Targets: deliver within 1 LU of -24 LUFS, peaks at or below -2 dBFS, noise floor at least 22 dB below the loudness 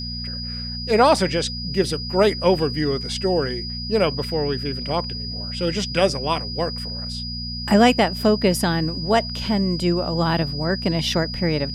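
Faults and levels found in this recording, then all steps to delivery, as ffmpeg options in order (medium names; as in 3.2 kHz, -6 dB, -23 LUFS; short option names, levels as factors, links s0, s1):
hum 60 Hz; highest harmonic 240 Hz; hum level -30 dBFS; steady tone 4.9 kHz; tone level -30 dBFS; loudness -21.5 LUFS; peak level -4.0 dBFS; loudness target -24.0 LUFS
-> -af "bandreject=f=60:t=h:w=4,bandreject=f=120:t=h:w=4,bandreject=f=180:t=h:w=4,bandreject=f=240:t=h:w=4"
-af "bandreject=f=4900:w=30"
-af "volume=0.75"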